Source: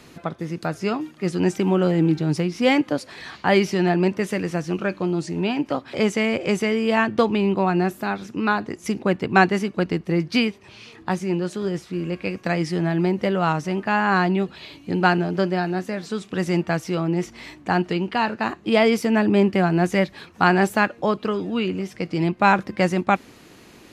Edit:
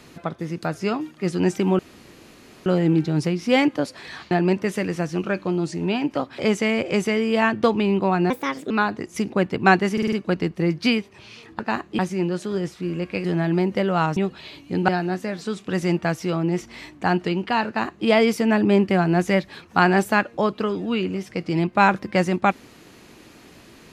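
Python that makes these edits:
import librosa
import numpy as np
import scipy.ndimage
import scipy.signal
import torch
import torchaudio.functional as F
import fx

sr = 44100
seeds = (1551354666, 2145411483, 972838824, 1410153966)

y = fx.edit(x, sr, fx.insert_room_tone(at_s=1.79, length_s=0.87),
    fx.cut(start_s=3.44, length_s=0.42),
    fx.speed_span(start_s=7.85, length_s=0.55, speed=1.36),
    fx.stutter(start_s=9.62, slice_s=0.05, count=5),
    fx.cut(start_s=12.35, length_s=0.36),
    fx.cut(start_s=13.63, length_s=0.71),
    fx.cut(start_s=15.06, length_s=0.47),
    fx.duplicate(start_s=18.32, length_s=0.39, to_s=11.09), tone=tone)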